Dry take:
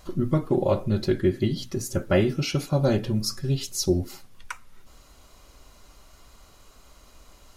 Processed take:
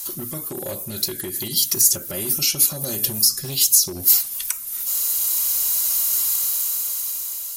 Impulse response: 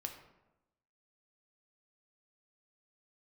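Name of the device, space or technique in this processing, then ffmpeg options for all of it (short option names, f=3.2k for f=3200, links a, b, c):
FM broadcast chain: -filter_complex "[0:a]highpass=f=67:p=1,dynaudnorm=f=690:g=5:m=16dB,acrossover=split=500|6200[a][b][c];[a]acompressor=threshold=-19dB:ratio=4[d];[b]acompressor=threshold=-37dB:ratio=4[e];[c]acompressor=threshold=-47dB:ratio=4[f];[d][e][f]amix=inputs=3:normalize=0,aemphasis=mode=production:type=75fm,alimiter=limit=-17.5dB:level=0:latency=1:release=91,asoftclip=type=hard:threshold=-21dB,lowpass=f=15k:w=0.5412,lowpass=f=15k:w=1.3066,aemphasis=mode=production:type=75fm,lowshelf=f=490:g=-9.5,volume=3dB"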